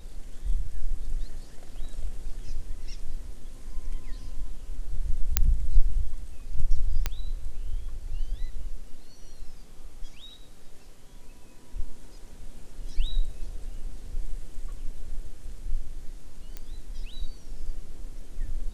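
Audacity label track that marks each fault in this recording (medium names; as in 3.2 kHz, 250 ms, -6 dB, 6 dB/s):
5.370000	5.370000	pop -3 dBFS
7.060000	7.060000	pop -11 dBFS
16.570000	16.570000	pop -21 dBFS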